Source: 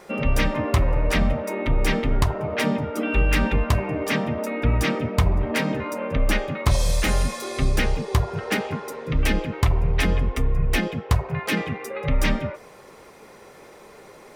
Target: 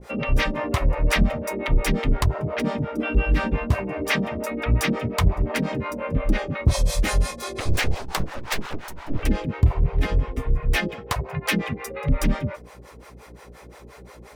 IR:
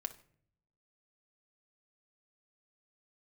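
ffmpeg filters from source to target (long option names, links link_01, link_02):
-filter_complex "[0:a]asettb=1/sr,asplit=3[link_01][link_02][link_03];[link_01]atrim=end=7.604[link_04];[link_02]atrim=start=7.6:end=9.23,asetpts=PTS-STARTPTS,afade=type=in:duration=0.004:curve=qsin,afade=type=out:start_time=1.626:duration=0.004:curve=qsin,aeval=exprs='abs(val(0))':channel_layout=same[link_05];[link_03]atrim=start=9.226[link_06];[link_04][link_05]acrossfade=duration=0.004:curve1=hsin:curve2=qsin[link_07];[link_07][link_06]acrossfade=duration=0.004:curve1=qsin:curve2=hsin,aeval=exprs='val(0)+0.00501*(sin(2*PI*60*n/s)+sin(2*PI*2*60*n/s)/2+sin(2*PI*3*60*n/s)/3+sin(2*PI*4*60*n/s)/4+sin(2*PI*5*60*n/s)/5)':channel_layout=same,acrossover=split=470[link_08][link_09];[link_08]aeval=exprs='val(0)*(1-1/2+1/2*cos(2*PI*5.7*n/s))':channel_layout=same[link_10];[link_09]aeval=exprs='val(0)*(1-1/2-1/2*cos(2*PI*5.7*n/s))':channel_layout=same[link_11];[link_10][link_11]amix=inputs=2:normalize=0,volume=4dB"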